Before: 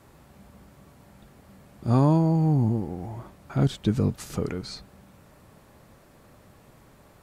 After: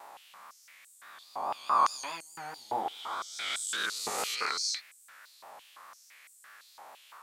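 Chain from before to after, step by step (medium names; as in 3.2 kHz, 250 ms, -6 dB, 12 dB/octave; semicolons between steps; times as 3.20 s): reverse spectral sustain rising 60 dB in 1.95 s; 1.84–3.15 s: doubling 24 ms -3.5 dB; vibrato 4.8 Hz 72 cents; step-sequenced high-pass 5.9 Hz 810–8000 Hz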